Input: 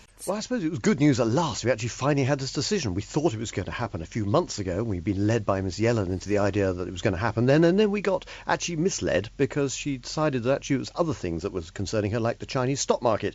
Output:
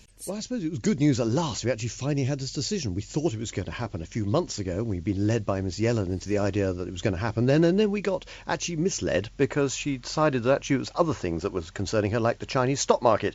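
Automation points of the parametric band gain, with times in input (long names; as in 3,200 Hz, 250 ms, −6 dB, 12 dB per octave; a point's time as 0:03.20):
parametric band 1,100 Hz 2 octaves
0:00.87 −12 dB
0:01.53 −3 dB
0:02.02 −14 dB
0:02.87 −14 dB
0:03.56 −5 dB
0:08.98 −5 dB
0:09.57 +4 dB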